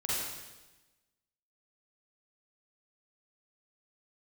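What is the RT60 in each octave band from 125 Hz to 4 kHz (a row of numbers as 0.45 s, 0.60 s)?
1.3 s, 1.3 s, 1.2 s, 1.1 s, 1.1 s, 1.1 s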